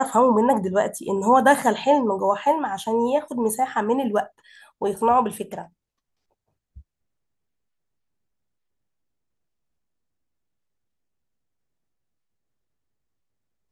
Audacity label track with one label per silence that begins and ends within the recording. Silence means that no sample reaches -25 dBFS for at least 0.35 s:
4.230000	4.820000	silence